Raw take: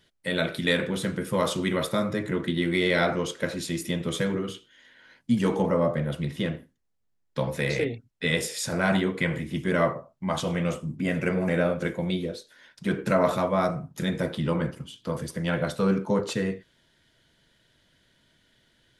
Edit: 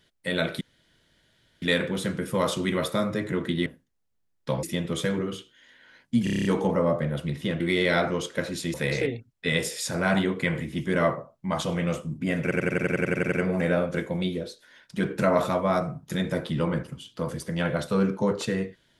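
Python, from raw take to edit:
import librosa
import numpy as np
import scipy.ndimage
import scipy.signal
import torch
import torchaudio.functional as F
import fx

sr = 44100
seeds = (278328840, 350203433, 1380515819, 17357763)

y = fx.edit(x, sr, fx.insert_room_tone(at_s=0.61, length_s=1.01),
    fx.swap(start_s=2.65, length_s=1.14, other_s=6.55, other_length_s=0.97),
    fx.stutter(start_s=5.4, slice_s=0.03, count=8),
    fx.stutter(start_s=11.2, slice_s=0.09, count=11), tone=tone)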